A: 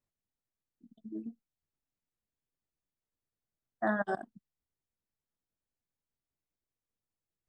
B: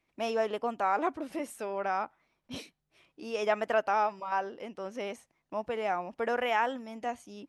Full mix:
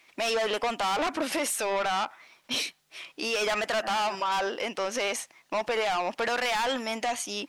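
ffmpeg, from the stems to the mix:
ffmpeg -i stem1.wav -i stem2.wav -filter_complex "[0:a]volume=-10dB[link_01];[1:a]asplit=2[link_02][link_03];[link_03]highpass=frequency=720:poles=1,volume=24dB,asoftclip=type=tanh:threshold=-14.5dB[link_04];[link_02][link_04]amix=inputs=2:normalize=0,lowpass=frequency=4700:poles=1,volume=-6dB,volume=-2dB[link_05];[link_01][link_05]amix=inputs=2:normalize=0,highshelf=frequency=2100:gain=11.5,alimiter=limit=-21dB:level=0:latency=1:release=72" out.wav

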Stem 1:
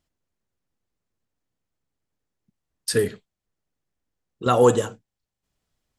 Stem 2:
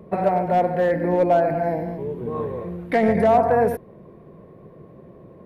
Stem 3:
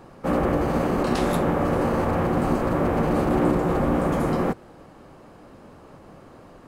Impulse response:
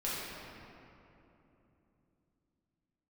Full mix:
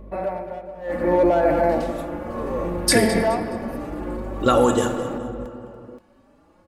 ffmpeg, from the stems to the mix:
-filter_complex "[0:a]acompressor=threshold=-20dB:ratio=6,acrusher=bits=10:mix=0:aa=0.000001,volume=-3.5dB,asplit=3[link_01][link_02][link_03];[link_02]volume=-10dB[link_04];[link_03]volume=-14dB[link_05];[1:a]highpass=frequency=250:poles=1,aeval=exprs='val(0)+0.01*(sin(2*PI*50*n/s)+sin(2*PI*2*50*n/s)/2+sin(2*PI*3*50*n/s)/3+sin(2*PI*4*50*n/s)/4+sin(2*PI*5*50*n/s)/5)':channel_layout=same,tremolo=f=0.7:d=0.99,volume=-1.5dB,asplit=3[link_06][link_07][link_08];[link_07]volume=-21dB[link_09];[link_08]volume=-16dB[link_10];[2:a]asplit=2[link_11][link_12];[link_12]adelay=4.7,afreqshift=1.6[link_13];[link_11][link_13]amix=inputs=2:normalize=1,adelay=650,volume=-17dB[link_14];[link_06][link_14]amix=inputs=2:normalize=0,alimiter=limit=-21dB:level=0:latency=1:release=17,volume=0dB[link_15];[3:a]atrim=start_sample=2205[link_16];[link_04][link_09]amix=inputs=2:normalize=0[link_17];[link_17][link_16]afir=irnorm=-1:irlink=0[link_18];[link_05][link_10]amix=inputs=2:normalize=0,aecho=0:1:211|422|633|844|1055:1|0.33|0.109|0.0359|0.0119[link_19];[link_01][link_15][link_18][link_19]amix=inputs=4:normalize=0,aecho=1:1:3.5:0.46,dynaudnorm=framelen=460:gausssize=3:maxgain=9.5dB"

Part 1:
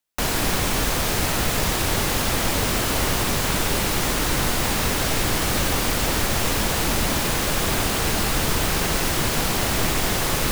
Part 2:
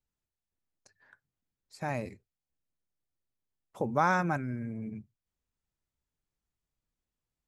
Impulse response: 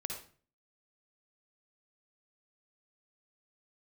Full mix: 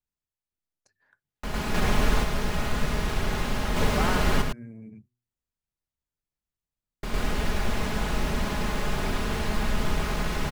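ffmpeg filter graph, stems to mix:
-filter_complex "[0:a]lowpass=frequency=1300:poles=1,equalizer=frequency=460:width_type=o:width=2.8:gain=-5,aecho=1:1:4.8:0.48,adelay=1250,volume=1dB,asplit=3[link_01][link_02][link_03];[link_01]atrim=end=4.42,asetpts=PTS-STARTPTS,afade=type=out:start_time=4.416:duration=0.004:curve=hsin[link_04];[link_02]atrim=start=4.42:end=7.03,asetpts=PTS-STARTPTS,volume=0[link_05];[link_03]atrim=start=7.03,asetpts=PTS-STARTPTS,afade=type=in:duration=0.004:curve=hsin[link_06];[link_04][link_05][link_06]concat=n=3:v=0:a=1,asplit=2[link_07][link_08];[link_08]volume=-5dB[link_09];[1:a]bandreject=frequency=122.2:width_type=h:width=4,bandreject=frequency=244.4:width_type=h:width=4,bandreject=frequency=366.6:width_type=h:width=4,volume=-5dB,asplit=2[link_10][link_11];[link_11]apad=whole_len=518836[link_12];[link_07][link_12]sidechaingate=range=-7dB:threshold=-59dB:ratio=16:detection=peak[link_13];[link_09]aecho=0:1:107:1[link_14];[link_13][link_10][link_14]amix=inputs=3:normalize=0"

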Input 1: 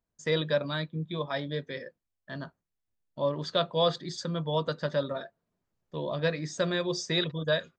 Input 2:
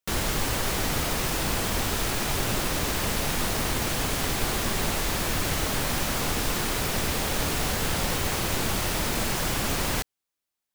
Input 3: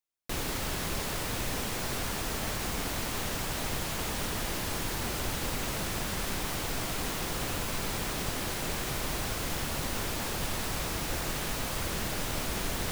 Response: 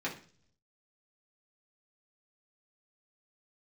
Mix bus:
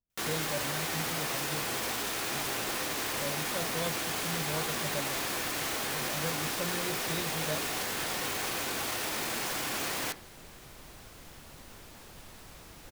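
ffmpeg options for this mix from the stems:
-filter_complex "[0:a]lowshelf=frequency=490:gain=11,volume=-15.5dB[link_01];[1:a]highpass=frequency=420:poles=1,adelay=100,volume=1.5dB,asplit=2[link_02][link_03];[link_03]volume=-18.5dB[link_04];[2:a]adelay=1750,volume=-17dB[link_05];[link_02][link_05]amix=inputs=2:normalize=0,alimiter=level_in=2dB:limit=-24dB:level=0:latency=1,volume=-2dB,volume=0dB[link_06];[3:a]atrim=start_sample=2205[link_07];[link_04][link_07]afir=irnorm=-1:irlink=0[link_08];[link_01][link_06][link_08]amix=inputs=3:normalize=0"

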